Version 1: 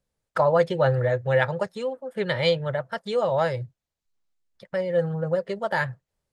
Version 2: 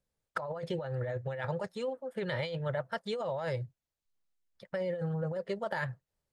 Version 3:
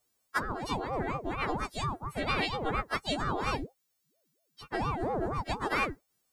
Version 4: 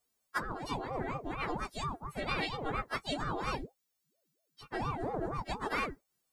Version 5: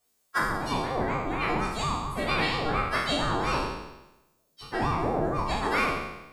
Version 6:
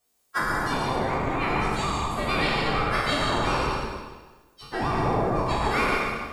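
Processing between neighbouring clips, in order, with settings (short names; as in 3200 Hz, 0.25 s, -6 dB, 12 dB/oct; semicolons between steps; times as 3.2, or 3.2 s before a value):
negative-ratio compressor -26 dBFS, ratio -1; gain -8 dB
frequency quantiser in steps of 3 st; ring modulator with a swept carrier 410 Hz, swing 65%, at 4.3 Hz; gain +5 dB
flange 0.52 Hz, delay 4.1 ms, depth 4 ms, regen -49%
spectral trails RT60 0.98 s; gain +5 dB
plate-style reverb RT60 1.2 s, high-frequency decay 0.9×, pre-delay 85 ms, DRR 0.5 dB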